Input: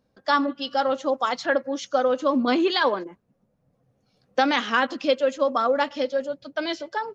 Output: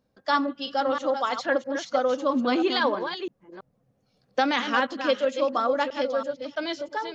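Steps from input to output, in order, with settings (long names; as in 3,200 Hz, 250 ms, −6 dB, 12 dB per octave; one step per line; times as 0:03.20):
delay that plays each chunk backwards 328 ms, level −8 dB
level −2.5 dB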